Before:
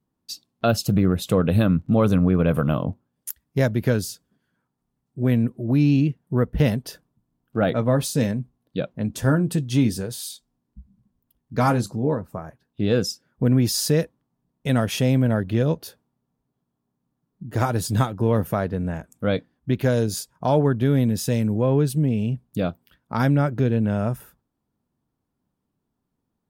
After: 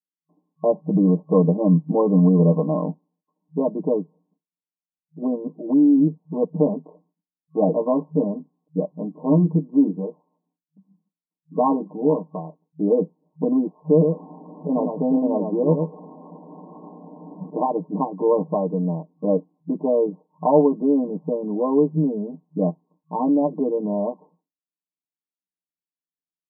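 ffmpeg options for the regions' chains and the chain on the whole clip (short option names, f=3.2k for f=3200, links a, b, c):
-filter_complex "[0:a]asettb=1/sr,asplit=3[a][b][c];[a]atrim=end=13.844[d];[b]atrim=start=13.84:end=17.5,asetpts=PTS-STARTPTS,afade=t=in:d=0.004:c=qsin,afade=t=out:st=3.656:d=0.004:c=qsin,aeval=exprs='val(0)+0.5*0.0158*sgn(val(0))':c=same,highpass=52,aecho=1:1:108:0.562,atrim=end_sample=161406[e];[c]atrim=start=17.496[f];[d][e]acrossfade=d=0.004:c1=hsin:c2=qsin[g];[g][f]acrossfade=d=0.004:c1=qsin:c2=hsin,agate=range=-33dB:threshold=-53dB:ratio=3:detection=peak,afftfilt=real='re*between(b*sr/4096,160,1100)':imag='im*between(b*sr/4096,160,1100)':win_size=4096:overlap=0.75,aecho=1:1:6.6:0.99"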